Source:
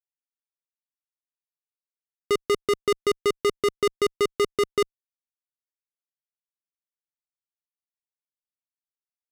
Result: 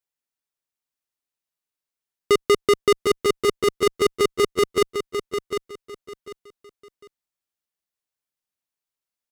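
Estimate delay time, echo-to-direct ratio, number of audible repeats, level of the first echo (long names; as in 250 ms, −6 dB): 749 ms, −7.5 dB, 3, −8.0 dB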